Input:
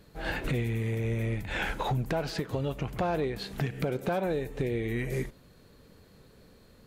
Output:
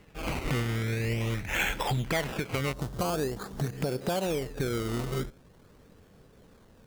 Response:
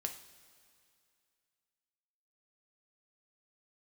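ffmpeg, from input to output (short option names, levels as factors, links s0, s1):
-af "acrusher=samples=18:mix=1:aa=0.000001:lfo=1:lforange=18:lforate=0.45,asetnsamples=n=441:p=0,asendcmd='2.73 equalizer g -9.5;3.73 equalizer g -2',equalizer=f=2300:t=o:w=0.77:g=8.5"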